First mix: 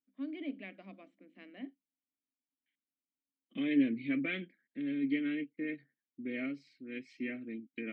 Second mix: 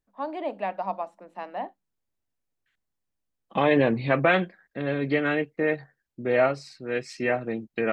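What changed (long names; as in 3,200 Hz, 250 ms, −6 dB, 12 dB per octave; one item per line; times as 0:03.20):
first voice −4.5 dB
master: remove formant filter i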